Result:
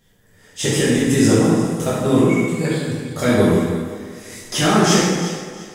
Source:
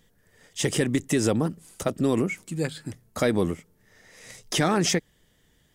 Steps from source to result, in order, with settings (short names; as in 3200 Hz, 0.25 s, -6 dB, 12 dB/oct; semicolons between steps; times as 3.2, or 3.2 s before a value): 3.4–4.39 high shelf 9700 Hz +8.5 dB; echo with dull and thin repeats by turns 0.174 s, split 1700 Hz, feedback 55%, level -8 dB; plate-style reverb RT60 1.4 s, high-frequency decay 0.8×, DRR -8.5 dB; gain -1 dB